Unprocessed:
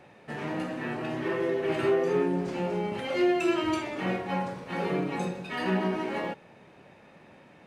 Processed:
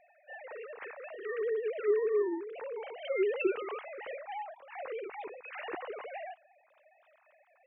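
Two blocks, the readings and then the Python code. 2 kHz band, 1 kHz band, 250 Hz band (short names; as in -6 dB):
-7.5 dB, -9.5 dB, -13.5 dB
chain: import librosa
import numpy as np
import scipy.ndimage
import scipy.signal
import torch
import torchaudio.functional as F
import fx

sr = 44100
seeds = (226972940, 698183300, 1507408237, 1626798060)

y = fx.sine_speech(x, sr)
y = y * 10.0 ** (-6.5 / 20.0)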